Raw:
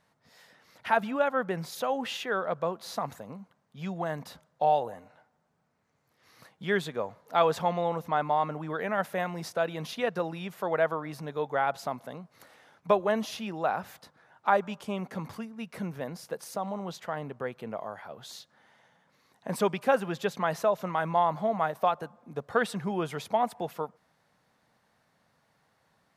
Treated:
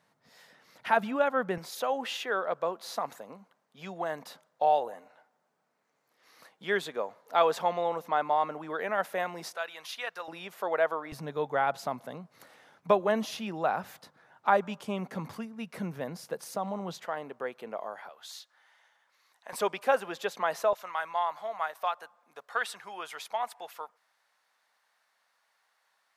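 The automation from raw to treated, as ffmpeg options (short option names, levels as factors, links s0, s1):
-af "asetnsamples=n=441:p=0,asendcmd='1.58 highpass f 320;9.56 highpass f 1100;10.28 highpass f 390;11.12 highpass f 110;17.05 highpass f 330;18.09 highpass f 990;19.53 highpass f 430;20.73 highpass f 1000',highpass=130"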